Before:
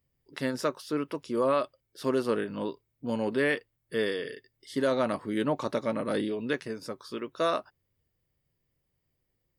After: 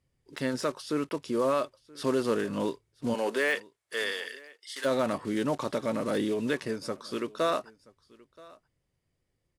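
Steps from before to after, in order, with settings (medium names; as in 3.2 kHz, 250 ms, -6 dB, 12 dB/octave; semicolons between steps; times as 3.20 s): block-companded coder 5-bit; low-pass 11 kHz 24 dB/octave; de-esser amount 80%; 3.13–4.84 s: high-pass 410 Hz -> 1.5 kHz 12 dB/octave; in parallel at +3 dB: peak limiter -25.5 dBFS, peak gain reduction 10 dB; on the sum: gain riding 2 s; on a send: delay 977 ms -23.5 dB; on the sum: trim -4.5 dB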